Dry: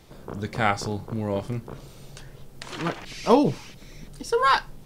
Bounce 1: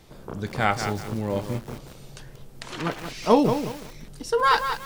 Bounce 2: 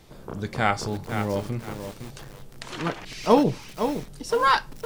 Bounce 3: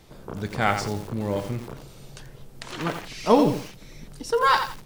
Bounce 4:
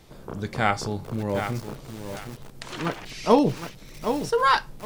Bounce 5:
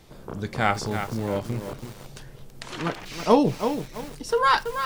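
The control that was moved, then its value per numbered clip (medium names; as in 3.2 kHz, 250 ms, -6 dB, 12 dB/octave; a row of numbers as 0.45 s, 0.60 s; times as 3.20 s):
bit-crushed delay, time: 185 ms, 510 ms, 87 ms, 766 ms, 330 ms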